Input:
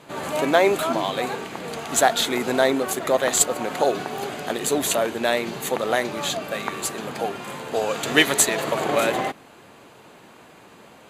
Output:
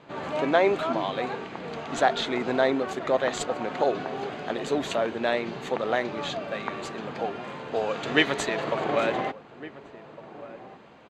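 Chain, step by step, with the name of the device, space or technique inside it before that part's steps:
shout across a valley (high-frequency loss of the air 170 metres; slap from a distant wall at 250 metres, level −16 dB)
0:01.82–0:02.88: low-pass filter 12,000 Hz 12 dB per octave
level −3 dB

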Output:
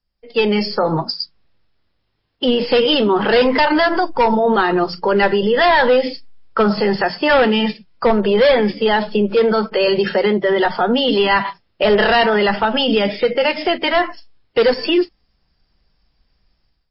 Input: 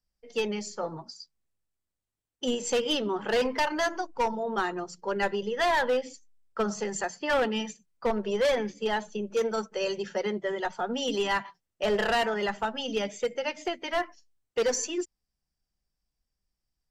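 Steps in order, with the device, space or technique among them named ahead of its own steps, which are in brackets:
low-bitrate web radio (automatic gain control gain up to 15 dB; brickwall limiter −14.5 dBFS, peak gain reduction 10.5 dB; level +7 dB; MP3 24 kbit/s 12,000 Hz)

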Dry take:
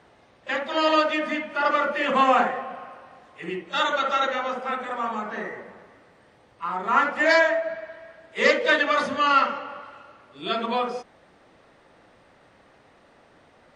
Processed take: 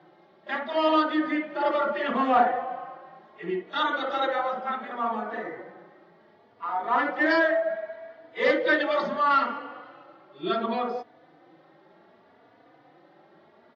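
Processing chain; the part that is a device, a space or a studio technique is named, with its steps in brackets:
high-pass filter 160 Hz 12 dB per octave
barber-pole flanger into a guitar amplifier (barber-pole flanger 3.4 ms +0.69 Hz; soft clipping −13 dBFS, distortion −20 dB; loudspeaker in its box 86–4,400 Hz, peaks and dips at 93 Hz +5 dB, 160 Hz +7 dB, 340 Hz +9 dB, 730 Hz +6 dB, 2,600 Hz −7 dB)

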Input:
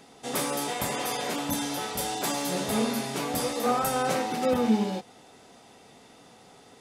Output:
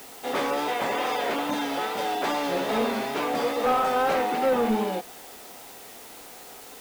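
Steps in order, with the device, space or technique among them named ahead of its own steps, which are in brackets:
tape answering machine (band-pass filter 320–2,800 Hz; soft clipping −23 dBFS, distortion −16 dB; tape wow and flutter; white noise bed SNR 19 dB)
level +6.5 dB

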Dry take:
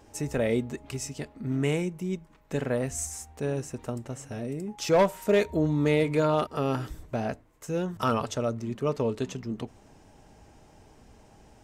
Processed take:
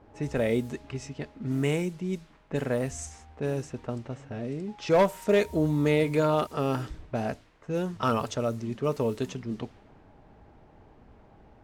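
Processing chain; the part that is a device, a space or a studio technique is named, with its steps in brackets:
cassette deck with a dynamic noise filter (white noise bed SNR 27 dB; low-pass that shuts in the quiet parts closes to 1,200 Hz, open at −24 dBFS)
0:04.03–0:04.95: low-pass filter 11,000 Hz

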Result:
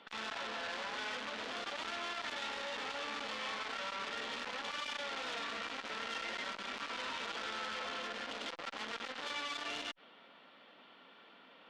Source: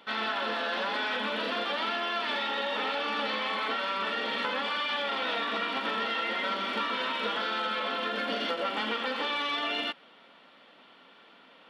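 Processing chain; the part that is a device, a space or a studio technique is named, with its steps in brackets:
valve radio (band-pass filter 84–5,800 Hz; tube saturation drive 27 dB, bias 0.35; saturating transformer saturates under 2,600 Hz)
level −2.5 dB

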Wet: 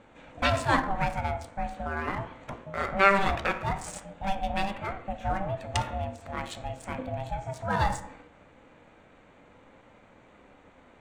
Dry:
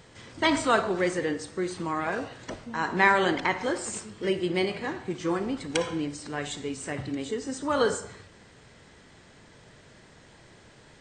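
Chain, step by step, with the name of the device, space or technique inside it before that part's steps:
adaptive Wiener filter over 9 samples
alien voice (ring modulation 390 Hz; flanger 0.2 Hz, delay 8.6 ms, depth 8.6 ms, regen +79%)
level +6 dB

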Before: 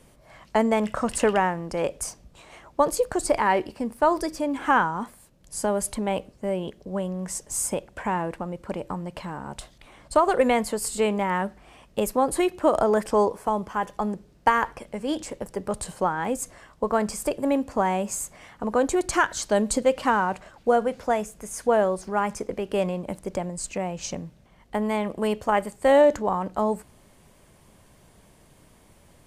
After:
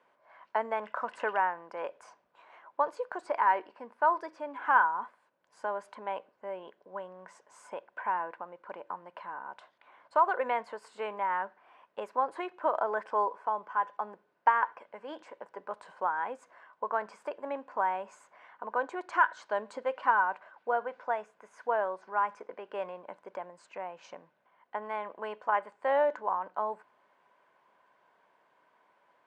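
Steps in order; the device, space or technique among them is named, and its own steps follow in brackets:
tin-can telephone (band-pass filter 640–2,000 Hz; hollow resonant body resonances 1,000/1,500 Hz, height 9 dB, ringing for 25 ms)
level −6.5 dB

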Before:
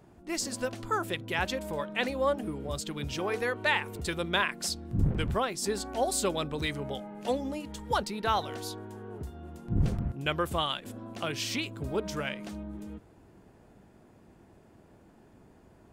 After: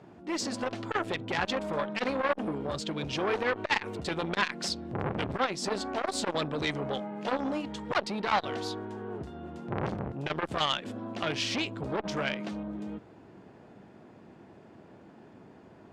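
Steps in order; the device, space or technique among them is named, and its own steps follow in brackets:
valve radio (band-pass filter 130–4,500 Hz; tube saturation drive 17 dB, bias 0.45; saturating transformer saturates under 2,100 Hz)
level +7.5 dB

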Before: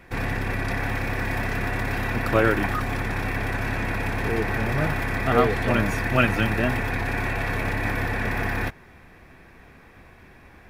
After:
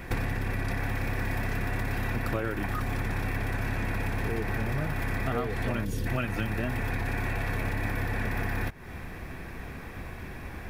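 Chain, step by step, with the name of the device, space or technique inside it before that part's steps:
gain on a spectral selection 0:05.85–0:06.07, 570–2,700 Hz −14 dB
ASMR close-microphone chain (low-shelf EQ 230 Hz +5.5 dB; downward compressor 10 to 1, threshold −33 dBFS, peak gain reduction 21 dB; high-shelf EQ 8,900 Hz +7 dB)
level +6.5 dB

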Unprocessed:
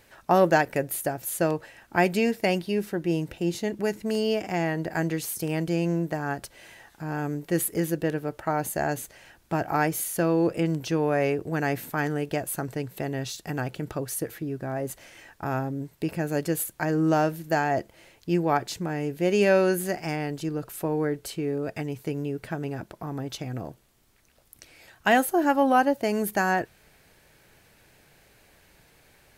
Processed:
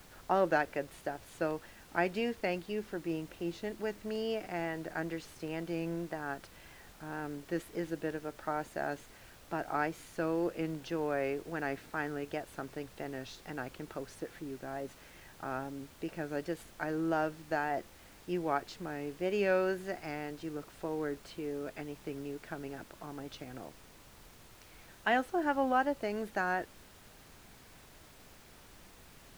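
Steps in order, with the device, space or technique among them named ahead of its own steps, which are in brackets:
horn gramophone (band-pass filter 210–4,200 Hz; parametric band 1,400 Hz +4 dB 0.32 octaves; tape wow and flutter; pink noise bed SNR 19 dB)
level −9 dB

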